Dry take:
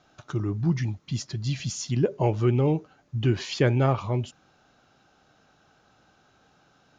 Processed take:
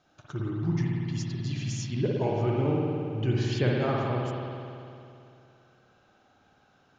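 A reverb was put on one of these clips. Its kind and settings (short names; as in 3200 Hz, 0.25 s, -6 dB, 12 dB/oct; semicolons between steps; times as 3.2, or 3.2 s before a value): spring tank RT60 2.7 s, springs 55 ms, chirp 35 ms, DRR -3 dB; gain -6.5 dB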